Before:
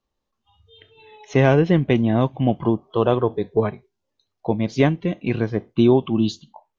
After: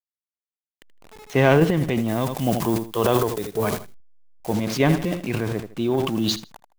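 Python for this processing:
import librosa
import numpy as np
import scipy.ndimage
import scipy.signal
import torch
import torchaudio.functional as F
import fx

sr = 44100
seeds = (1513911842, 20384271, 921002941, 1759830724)

y = fx.delta_hold(x, sr, step_db=-37.0)
y = fx.low_shelf(y, sr, hz=460.0, db=-5.0)
y = fx.echo_feedback(y, sr, ms=79, feedback_pct=25, wet_db=-17.0)
y = fx.tremolo_random(y, sr, seeds[0], hz=2.5, depth_pct=55)
y = fx.high_shelf(y, sr, hz=5100.0, db=11.0, at=(2.08, 4.53))
y = fx.transient(y, sr, attack_db=-2, sustain_db=11)
y = y * 10.0 ** (2.5 / 20.0)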